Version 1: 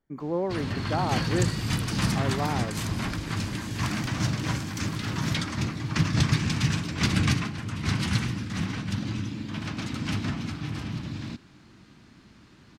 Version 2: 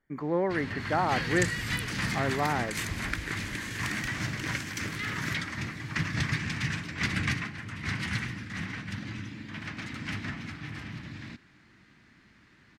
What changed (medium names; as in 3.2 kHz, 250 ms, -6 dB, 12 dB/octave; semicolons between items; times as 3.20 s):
first sound -8.0 dB; master: add peaking EQ 1.9 kHz +12 dB 0.81 oct